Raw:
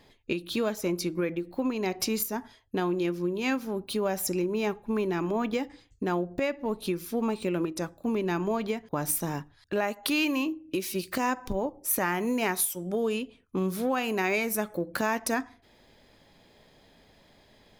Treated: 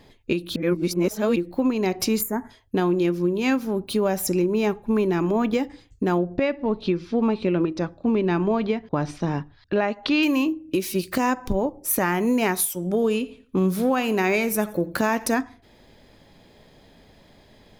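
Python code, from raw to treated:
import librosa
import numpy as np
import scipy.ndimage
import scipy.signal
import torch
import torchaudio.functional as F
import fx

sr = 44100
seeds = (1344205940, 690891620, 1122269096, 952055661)

y = fx.spec_box(x, sr, start_s=2.21, length_s=0.29, low_hz=2300.0, high_hz=6400.0, gain_db=-21)
y = fx.lowpass(y, sr, hz=4800.0, slope=24, at=(6.18, 10.23))
y = fx.echo_feedback(y, sr, ms=86, feedback_pct=32, wet_db=-18, at=(12.74, 15.33))
y = fx.edit(y, sr, fx.reverse_span(start_s=0.56, length_s=0.8), tone=tone)
y = fx.low_shelf(y, sr, hz=480.0, db=5.0)
y = y * 10.0 ** (3.5 / 20.0)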